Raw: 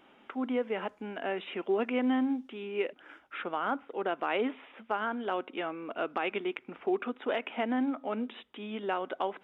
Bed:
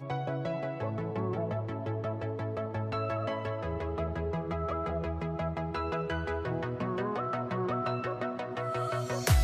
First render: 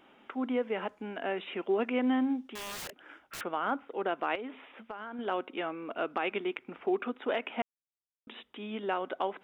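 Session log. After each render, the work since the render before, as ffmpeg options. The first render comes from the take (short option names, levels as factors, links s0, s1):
-filter_complex "[0:a]asettb=1/sr,asplit=3[s0][s1][s2];[s0]atrim=end=2.554[s3];[s1]atrim=start=2.55:end=3.41,asetpts=PTS-STARTPTS,afade=t=in:d=0.004:c=qsin,afade=t=out:st=0.856:d=0.004:c=qsin,aeval=exprs='(mod(63.1*val(0)+1,2)-1)/63.1':c=same[s4];[s2]atrim=start=3.406[s5];[s3][s4]acrossfade=d=0.004:c1=hsin:c2=qsin[s6];[s6][s5]acrossfade=d=0.004:c1=qsin:c2=hsin,asettb=1/sr,asplit=3[s7][s8][s9];[s7]atrim=end=4.354[s10];[s8]atrim=start=4.35:end=5.19,asetpts=PTS-STARTPTS,afade=t=in:d=0.004:c=qsin,afade=t=out:st=0.836:d=0.004:c=qsin,acompressor=threshold=0.0141:ratio=6:attack=3.2:release=140:knee=1:detection=peak[s11];[s9]atrim=start=5.186[s12];[s10][s11]acrossfade=d=0.004:c1=hsin:c2=qsin[s13];[s13][s12]acrossfade=d=0.004:c1=qsin:c2=hsin,asplit=3[s14][s15][s16];[s14]atrim=end=7.62,asetpts=PTS-STARTPTS,afade=t=out:st=7.616:d=0.004:c=hsin[s17];[s15]atrim=start=7.62:end=8.27,asetpts=PTS-STARTPTS,volume=0[s18];[s16]atrim=start=8.27,asetpts=PTS-STARTPTS,afade=t=in:d=0.004:c=hsin[s19];[s17][s18][s19]concat=n=3:v=0:a=1"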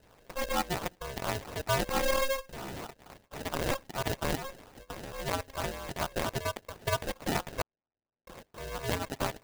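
-af "acrusher=samples=41:mix=1:aa=0.000001,aeval=exprs='val(0)*sgn(sin(2*PI*270*n/s))':c=same"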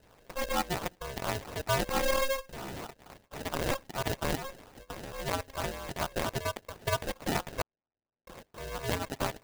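-af anull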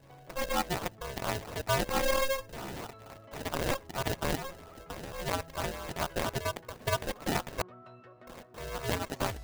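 -filter_complex "[1:a]volume=0.1[s0];[0:a][s0]amix=inputs=2:normalize=0"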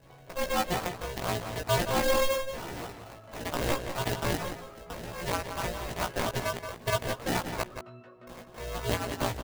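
-filter_complex "[0:a]asplit=2[s0][s1];[s1]adelay=17,volume=0.708[s2];[s0][s2]amix=inputs=2:normalize=0,asplit=2[s3][s4];[s4]adelay=174.9,volume=0.398,highshelf=f=4000:g=-3.94[s5];[s3][s5]amix=inputs=2:normalize=0"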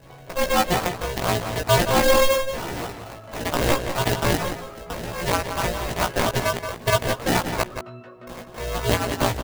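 -af "volume=2.66"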